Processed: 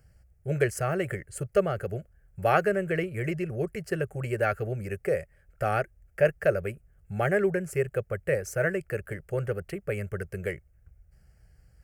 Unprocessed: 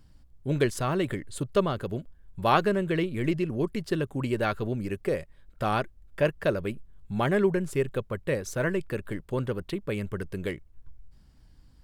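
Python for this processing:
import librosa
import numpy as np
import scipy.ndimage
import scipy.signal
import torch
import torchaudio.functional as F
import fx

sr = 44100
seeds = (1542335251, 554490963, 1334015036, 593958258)

y = scipy.signal.sosfilt(scipy.signal.butter(2, 46.0, 'highpass', fs=sr, output='sos'), x)
y = fx.fixed_phaser(y, sr, hz=1000.0, stages=6)
y = y * 10.0 ** (3.0 / 20.0)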